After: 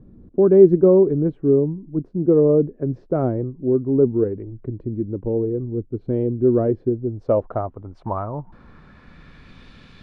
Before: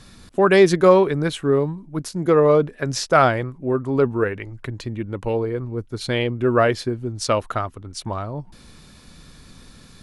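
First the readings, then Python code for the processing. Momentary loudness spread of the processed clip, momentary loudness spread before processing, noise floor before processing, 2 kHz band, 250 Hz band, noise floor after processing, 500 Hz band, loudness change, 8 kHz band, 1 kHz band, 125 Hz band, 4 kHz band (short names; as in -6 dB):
15 LU, 15 LU, -47 dBFS, under -20 dB, +3.5 dB, -51 dBFS, +1.0 dB, +0.5 dB, under -40 dB, -10.5 dB, +1.0 dB, under -25 dB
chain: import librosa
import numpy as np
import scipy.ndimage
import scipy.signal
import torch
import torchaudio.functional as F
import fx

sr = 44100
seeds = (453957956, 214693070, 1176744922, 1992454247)

y = fx.filter_sweep_lowpass(x, sr, from_hz=360.0, to_hz=2800.0, start_s=6.75, end_s=9.67, q=1.6)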